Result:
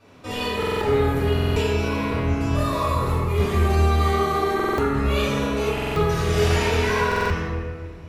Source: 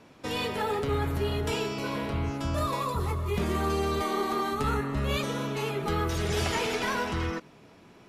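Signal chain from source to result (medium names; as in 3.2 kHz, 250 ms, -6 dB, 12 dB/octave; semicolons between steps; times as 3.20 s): reverberation RT60 1.7 s, pre-delay 3 ms, DRR -11 dB; buffer glitch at 0.58/1.33/4.55/5.73/7.07 s, samples 2048, times 4; trim -7.5 dB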